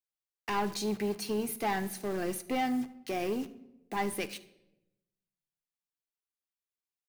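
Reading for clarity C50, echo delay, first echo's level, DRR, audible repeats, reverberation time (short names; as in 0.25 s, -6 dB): 15.5 dB, 76 ms, -22.0 dB, 10.5 dB, 1, 0.95 s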